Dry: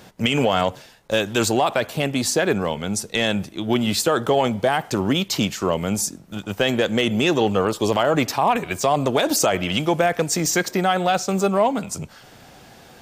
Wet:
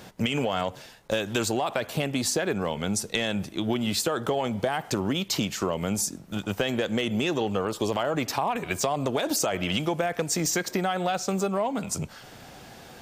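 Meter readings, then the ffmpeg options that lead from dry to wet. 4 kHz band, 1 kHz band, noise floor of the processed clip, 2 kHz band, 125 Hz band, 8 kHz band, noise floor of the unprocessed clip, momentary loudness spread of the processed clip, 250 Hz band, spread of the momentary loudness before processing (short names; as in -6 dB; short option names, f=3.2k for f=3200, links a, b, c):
-6.0 dB, -8.0 dB, -47 dBFS, -7.0 dB, -5.5 dB, -4.5 dB, -47 dBFS, 6 LU, -6.0 dB, 5 LU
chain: -af "acompressor=threshold=-23dB:ratio=6"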